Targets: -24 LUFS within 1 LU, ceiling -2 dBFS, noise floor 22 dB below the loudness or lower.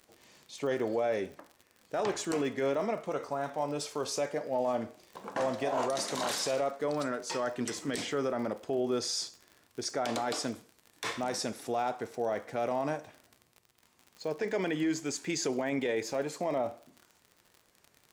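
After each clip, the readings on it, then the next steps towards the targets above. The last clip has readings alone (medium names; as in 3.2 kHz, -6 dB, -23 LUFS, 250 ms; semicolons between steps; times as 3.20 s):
tick rate 53 per s; loudness -33.0 LUFS; peak level -20.5 dBFS; loudness target -24.0 LUFS
-> de-click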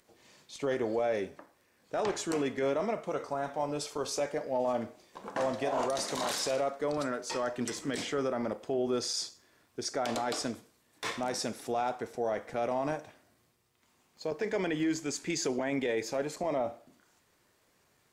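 tick rate 0.33 per s; loudness -33.5 LUFS; peak level -20.5 dBFS; loudness target -24.0 LUFS
-> trim +9.5 dB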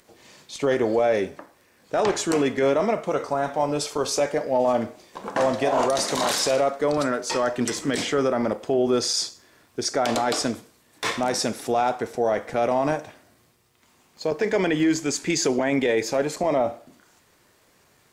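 loudness -24.0 LUFS; peak level -11.0 dBFS; noise floor -61 dBFS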